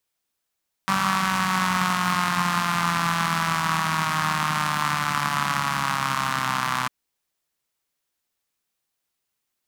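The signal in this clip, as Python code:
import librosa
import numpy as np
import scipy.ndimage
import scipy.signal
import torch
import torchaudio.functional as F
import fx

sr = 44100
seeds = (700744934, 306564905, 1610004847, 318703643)

y = fx.engine_four_rev(sr, seeds[0], length_s=6.0, rpm=5800, resonances_hz=(180.0, 1100.0), end_rpm=3800)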